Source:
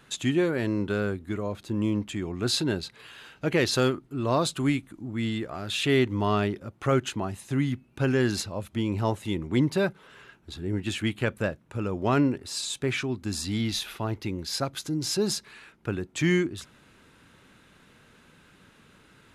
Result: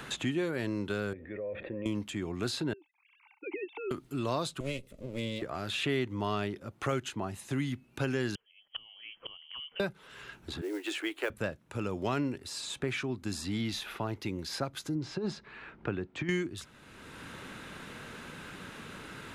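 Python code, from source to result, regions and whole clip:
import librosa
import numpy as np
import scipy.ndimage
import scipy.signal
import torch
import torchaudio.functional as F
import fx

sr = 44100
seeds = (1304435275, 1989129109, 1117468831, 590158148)

y = fx.chain(x, sr, fx.formant_cascade(vowel='e'),
    fx.env_flatten(amount_pct=70), at=(1.13, 1.86))
y = fx.chain(y, sr, fx.sine_speech(),
    fx.vowel_filter(vowel='u'), at=(2.73, 3.91))
y = fx.chain(y, sr, fx.lower_of_two(delay_ms=1.5),
    fx.band_shelf(hz=1100.0, db=-13.5, octaves=1.7), at=(4.6, 5.42))
y = fx.chain(y, sr, fx.gate_flip(shuts_db=-27.0, range_db=-29),
    fx.freq_invert(carrier_hz=3200), at=(8.35, 9.8))
y = fx.chain(y, sr, fx.steep_highpass(hz=300.0, slope=72),
    fx.quant_companded(bits=6), at=(10.61, 11.3))
y = fx.chain(y, sr, fx.bessel_lowpass(hz=1600.0, order=2),
    fx.over_compress(threshold_db=-26.0, ratio=-0.5), at=(14.95, 16.29))
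y = fx.low_shelf(y, sr, hz=320.0, db=-3.0)
y = fx.band_squash(y, sr, depth_pct=70)
y = F.gain(torch.from_numpy(y), -4.5).numpy()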